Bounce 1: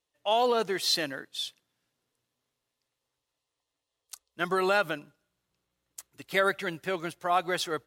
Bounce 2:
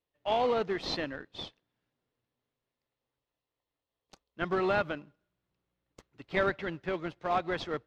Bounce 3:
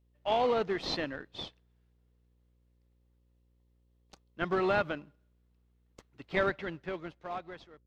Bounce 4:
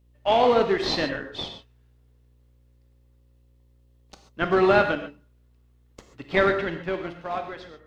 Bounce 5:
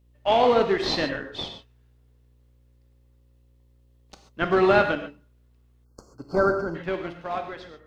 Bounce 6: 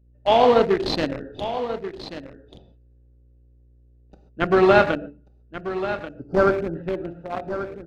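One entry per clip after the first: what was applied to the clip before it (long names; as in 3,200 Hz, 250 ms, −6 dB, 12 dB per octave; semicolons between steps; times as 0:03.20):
in parallel at −9 dB: sample-rate reduction 1,600 Hz, jitter 20%; on the sum: high-frequency loss of the air 210 metres; level −3 dB
fade-out on the ending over 1.56 s; hum with harmonics 60 Hz, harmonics 9, −69 dBFS −8 dB per octave
reverb whose tail is shaped and stops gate 160 ms flat, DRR 5.5 dB; level +8 dB
gain on a spectral selection 0:05.85–0:06.75, 1,600–4,200 Hz −28 dB
adaptive Wiener filter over 41 samples; on a send: single-tap delay 1,136 ms −11.5 dB; on the sum: level +4 dB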